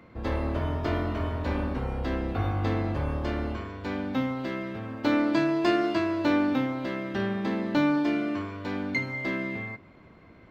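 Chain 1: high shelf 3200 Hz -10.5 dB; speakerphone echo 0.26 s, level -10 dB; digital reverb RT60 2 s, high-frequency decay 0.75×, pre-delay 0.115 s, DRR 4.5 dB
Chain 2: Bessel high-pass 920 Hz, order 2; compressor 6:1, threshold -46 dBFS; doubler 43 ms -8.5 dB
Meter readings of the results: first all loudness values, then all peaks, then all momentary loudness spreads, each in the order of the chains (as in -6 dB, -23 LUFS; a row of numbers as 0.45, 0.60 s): -28.0, -47.0 LUFS; -10.0, -31.0 dBFS; 8, 5 LU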